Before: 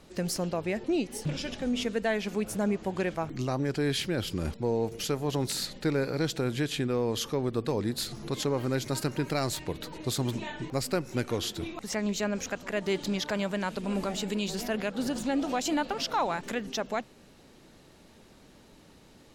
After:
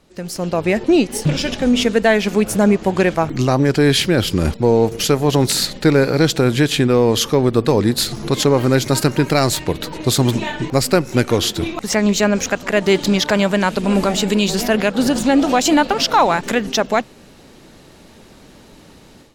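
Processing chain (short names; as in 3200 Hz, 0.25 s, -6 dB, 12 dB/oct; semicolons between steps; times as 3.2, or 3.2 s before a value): AGC gain up to 12.5 dB; in parallel at -5.5 dB: crossover distortion -32.5 dBFS; on the sum: gain -1 dB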